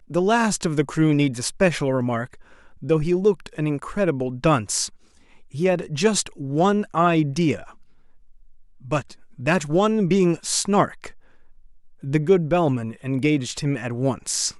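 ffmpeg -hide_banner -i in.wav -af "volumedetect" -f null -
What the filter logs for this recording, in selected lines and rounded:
mean_volume: -22.5 dB
max_volume: -5.3 dB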